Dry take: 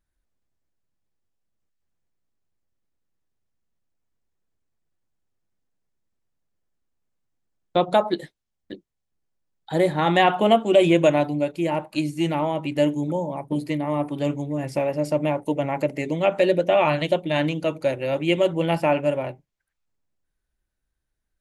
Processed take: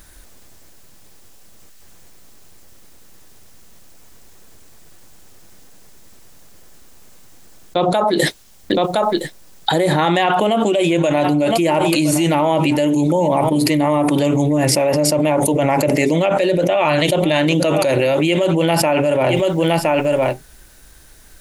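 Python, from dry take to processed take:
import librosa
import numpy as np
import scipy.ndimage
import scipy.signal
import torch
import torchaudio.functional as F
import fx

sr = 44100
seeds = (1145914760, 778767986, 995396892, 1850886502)

p1 = fx.bass_treble(x, sr, bass_db=-4, treble_db=6)
p2 = p1 + fx.echo_single(p1, sr, ms=1015, db=-23.5, dry=0)
p3 = fx.env_flatten(p2, sr, amount_pct=100)
y = p3 * librosa.db_to_amplitude(-4.0)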